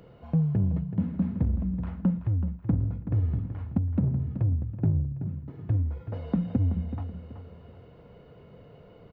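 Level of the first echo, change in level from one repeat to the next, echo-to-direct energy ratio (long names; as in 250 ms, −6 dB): −10.5 dB, −9.5 dB, −10.0 dB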